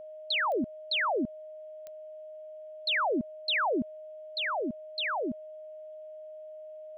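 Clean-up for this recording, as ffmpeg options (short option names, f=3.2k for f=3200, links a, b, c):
-af "adeclick=t=4,bandreject=f=620:w=30,agate=range=-21dB:threshold=-37dB"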